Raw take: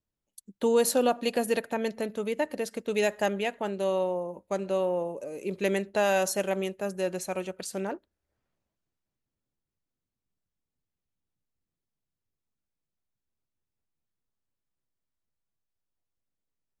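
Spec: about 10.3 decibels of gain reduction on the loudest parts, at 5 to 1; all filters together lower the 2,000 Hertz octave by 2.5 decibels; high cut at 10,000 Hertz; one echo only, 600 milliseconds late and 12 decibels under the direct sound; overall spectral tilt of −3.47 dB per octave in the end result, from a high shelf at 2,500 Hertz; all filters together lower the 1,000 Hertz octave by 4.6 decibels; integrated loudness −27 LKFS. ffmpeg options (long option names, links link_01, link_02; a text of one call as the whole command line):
ffmpeg -i in.wav -af "lowpass=10000,equalizer=frequency=1000:width_type=o:gain=-7,equalizer=frequency=2000:width_type=o:gain=-6,highshelf=frequency=2500:gain=8.5,acompressor=threshold=-32dB:ratio=5,aecho=1:1:600:0.251,volume=9dB" out.wav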